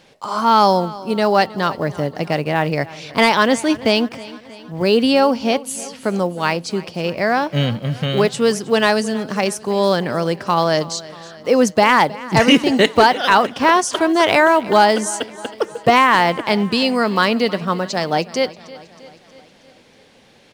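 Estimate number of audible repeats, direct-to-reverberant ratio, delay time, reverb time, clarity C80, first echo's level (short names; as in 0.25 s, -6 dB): 4, none, 0.317 s, none, none, -19.0 dB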